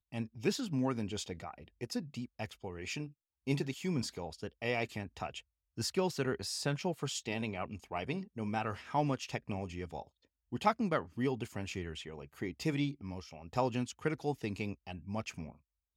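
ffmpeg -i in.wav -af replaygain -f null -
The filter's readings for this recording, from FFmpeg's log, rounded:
track_gain = +16.8 dB
track_peak = 0.108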